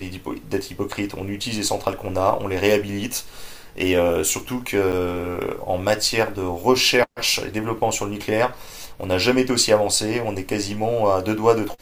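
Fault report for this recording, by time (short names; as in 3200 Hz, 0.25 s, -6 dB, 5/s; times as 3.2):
4.92–4.93 gap 9.1 ms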